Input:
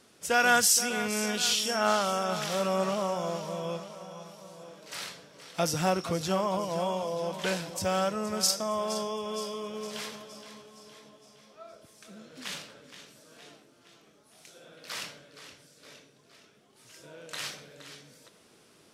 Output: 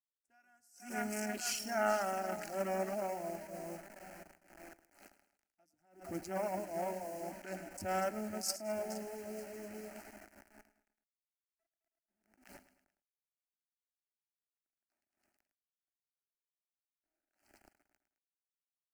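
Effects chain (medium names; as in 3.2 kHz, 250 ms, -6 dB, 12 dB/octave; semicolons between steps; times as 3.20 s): local Wiener filter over 25 samples; reverb removal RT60 0.79 s; hum notches 60/120/180 Hz; in parallel at 0 dB: peak limiter -19 dBFS, peak gain reduction 7 dB; on the sum: bit crusher 7-bit; static phaser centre 720 Hz, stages 8; on a send: feedback delay 107 ms, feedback 44%, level -17 dB; on the sum: attacks held to a fixed rise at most 120 dB/s; trim -6.5 dB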